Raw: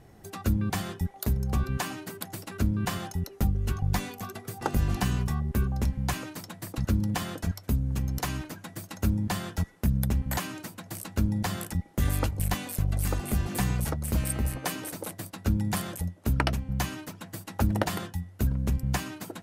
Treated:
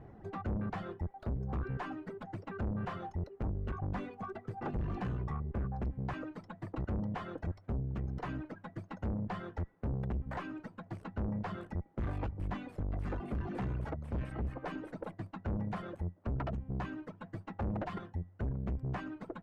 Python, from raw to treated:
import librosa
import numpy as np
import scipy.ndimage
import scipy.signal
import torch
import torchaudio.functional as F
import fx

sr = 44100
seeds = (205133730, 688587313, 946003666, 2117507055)

y = fx.dereverb_blind(x, sr, rt60_s=1.7)
y = fx.tube_stage(y, sr, drive_db=35.0, bias=0.3)
y = scipy.signal.sosfilt(scipy.signal.butter(2, 1400.0, 'lowpass', fs=sr, output='sos'), y)
y = y * librosa.db_to_amplitude(3.0)